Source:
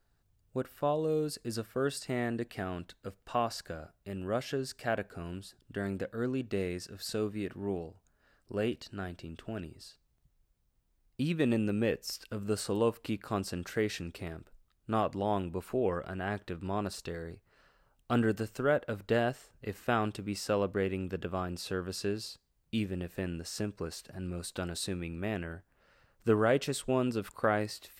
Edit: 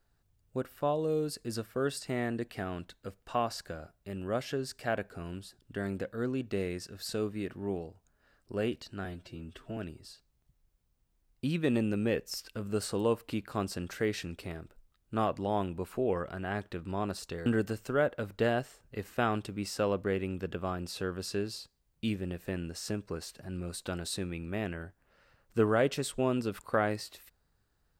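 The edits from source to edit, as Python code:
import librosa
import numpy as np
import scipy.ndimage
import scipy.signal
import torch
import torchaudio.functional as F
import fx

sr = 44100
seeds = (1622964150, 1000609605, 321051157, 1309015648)

y = fx.edit(x, sr, fx.stretch_span(start_s=9.05, length_s=0.48, factor=1.5),
    fx.cut(start_s=17.22, length_s=0.94), tone=tone)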